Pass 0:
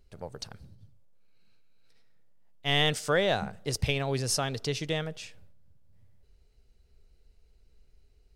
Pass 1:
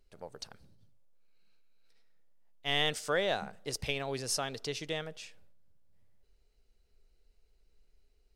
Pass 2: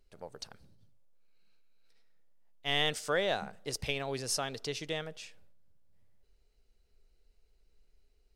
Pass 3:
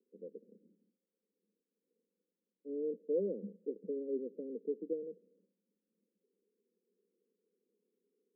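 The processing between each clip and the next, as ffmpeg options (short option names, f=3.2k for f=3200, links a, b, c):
-af "equalizer=f=93:w=0.69:g=-10.5,volume=-4dB"
-af anull
-af "asuperpass=centerf=310:order=20:qfactor=0.92,volume=2dB"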